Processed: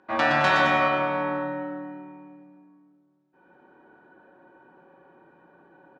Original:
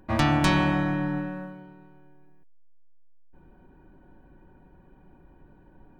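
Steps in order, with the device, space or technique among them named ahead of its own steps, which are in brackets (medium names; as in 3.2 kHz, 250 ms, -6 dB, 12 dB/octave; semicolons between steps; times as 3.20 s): station announcement (band-pass 400–3900 Hz; peaking EQ 1.4 kHz +4 dB 0.59 oct; loudspeakers at several distances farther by 40 m -4 dB, 74 m -8 dB; reverberation RT60 2.2 s, pre-delay 16 ms, DRR -2 dB)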